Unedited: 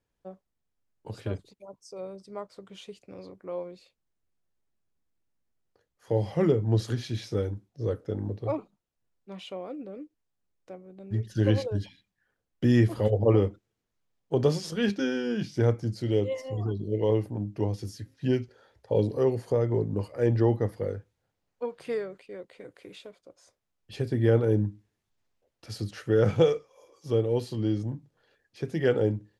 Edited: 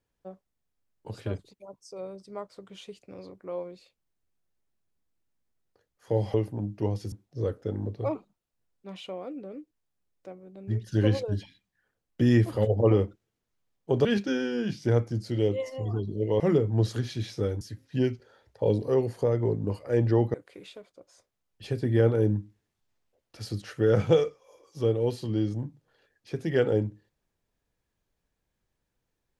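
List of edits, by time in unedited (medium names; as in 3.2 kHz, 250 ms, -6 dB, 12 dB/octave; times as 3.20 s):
6.34–7.55 s: swap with 17.12–17.90 s
14.48–14.77 s: delete
20.63–22.63 s: delete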